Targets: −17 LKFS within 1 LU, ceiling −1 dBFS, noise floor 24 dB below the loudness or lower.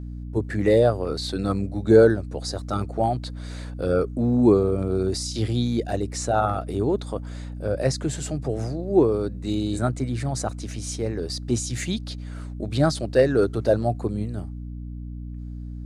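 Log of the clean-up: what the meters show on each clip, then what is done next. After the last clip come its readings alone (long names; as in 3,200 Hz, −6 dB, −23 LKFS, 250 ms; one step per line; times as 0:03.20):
mains hum 60 Hz; hum harmonics up to 300 Hz; level of the hum −32 dBFS; integrated loudness −24.0 LKFS; sample peak −3.5 dBFS; target loudness −17.0 LKFS
→ hum removal 60 Hz, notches 5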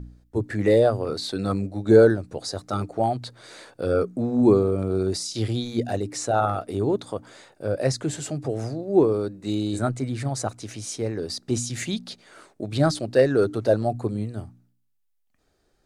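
mains hum none found; integrated loudness −24.0 LKFS; sample peak −4.0 dBFS; target loudness −17.0 LKFS
→ level +7 dB
brickwall limiter −1 dBFS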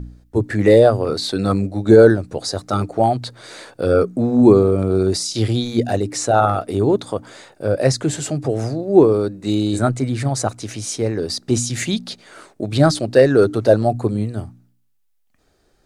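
integrated loudness −17.5 LKFS; sample peak −1.0 dBFS; background noise floor −62 dBFS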